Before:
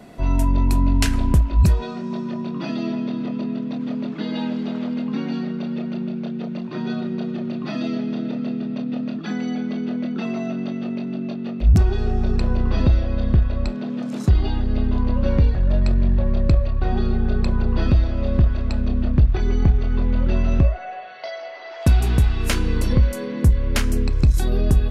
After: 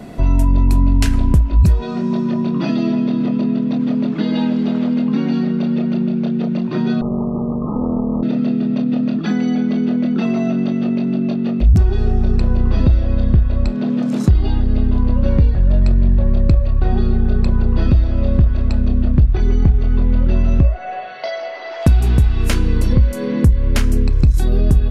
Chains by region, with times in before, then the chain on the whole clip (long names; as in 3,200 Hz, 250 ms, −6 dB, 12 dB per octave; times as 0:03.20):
0:07.01–0:08.23: lower of the sound and its delayed copy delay 0.86 ms + linear-phase brick-wall low-pass 1,300 Hz + low-shelf EQ 370 Hz −3 dB
whole clip: low-shelf EQ 380 Hz +6 dB; downward compressor 2 to 1, threshold −21 dBFS; level +6 dB